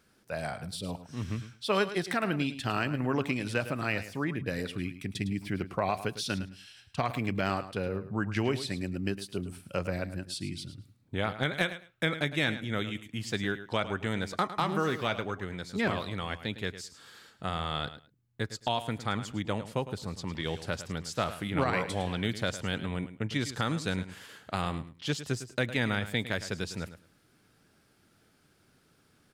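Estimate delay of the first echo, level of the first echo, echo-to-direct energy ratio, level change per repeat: 0.107 s, -13.0 dB, -13.0 dB, -15.5 dB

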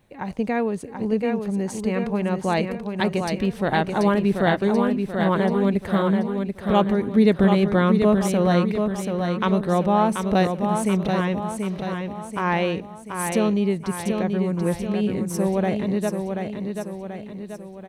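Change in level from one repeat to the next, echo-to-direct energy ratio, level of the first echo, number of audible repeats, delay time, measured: -6.0 dB, -4.0 dB, -5.5 dB, 6, 0.734 s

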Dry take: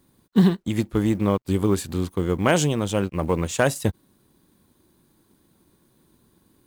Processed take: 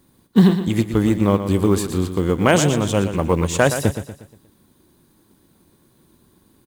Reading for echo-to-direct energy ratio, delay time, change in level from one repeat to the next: -9.0 dB, 0.119 s, -7.5 dB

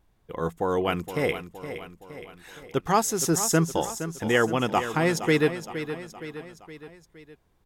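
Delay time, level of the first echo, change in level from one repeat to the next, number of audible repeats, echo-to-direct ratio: 0.467 s, -11.0 dB, -5.5 dB, 4, -9.5 dB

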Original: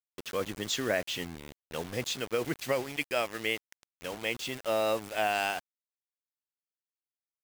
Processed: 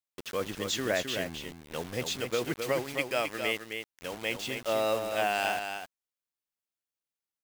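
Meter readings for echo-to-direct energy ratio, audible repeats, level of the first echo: -6.5 dB, 1, -6.5 dB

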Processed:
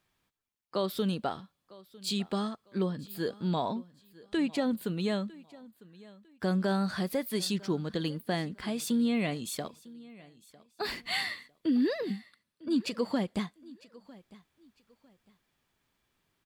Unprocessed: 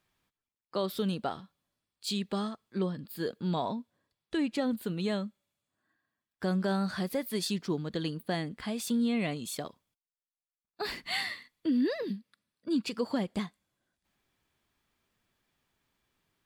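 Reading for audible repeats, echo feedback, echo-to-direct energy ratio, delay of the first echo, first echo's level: 2, 27%, -21.0 dB, 0.952 s, -21.5 dB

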